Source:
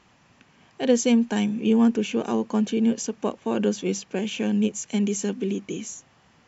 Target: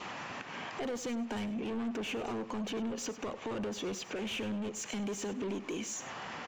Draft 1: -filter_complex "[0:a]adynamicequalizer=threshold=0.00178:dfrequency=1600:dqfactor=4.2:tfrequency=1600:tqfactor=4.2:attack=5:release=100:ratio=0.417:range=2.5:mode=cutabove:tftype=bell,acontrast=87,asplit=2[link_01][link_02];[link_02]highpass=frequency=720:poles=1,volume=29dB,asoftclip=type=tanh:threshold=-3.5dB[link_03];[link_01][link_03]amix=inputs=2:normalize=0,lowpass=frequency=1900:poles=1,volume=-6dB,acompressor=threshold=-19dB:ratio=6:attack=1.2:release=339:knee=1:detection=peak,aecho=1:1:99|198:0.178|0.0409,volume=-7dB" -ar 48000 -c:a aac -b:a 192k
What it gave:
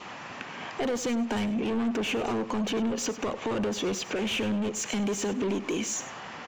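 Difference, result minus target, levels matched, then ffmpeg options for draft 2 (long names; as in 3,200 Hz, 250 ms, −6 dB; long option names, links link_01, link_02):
downward compressor: peak gain reduction −8 dB
-filter_complex "[0:a]adynamicequalizer=threshold=0.00178:dfrequency=1600:dqfactor=4.2:tfrequency=1600:tqfactor=4.2:attack=5:release=100:ratio=0.417:range=2.5:mode=cutabove:tftype=bell,acontrast=87,asplit=2[link_01][link_02];[link_02]highpass=frequency=720:poles=1,volume=29dB,asoftclip=type=tanh:threshold=-3.5dB[link_03];[link_01][link_03]amix=inputs=2:normalize=0,lowpass=frequency=1900:poles=1,volume=-6dB,acompressor=threshold=-28.5dB:ratio=6:attack=1.2:release=339:knee=1:detection=peak,aecho=1:1:99|198:0.178|0.0409,volume=-7dB" -ar 48000 -c:a aac -b:a 192k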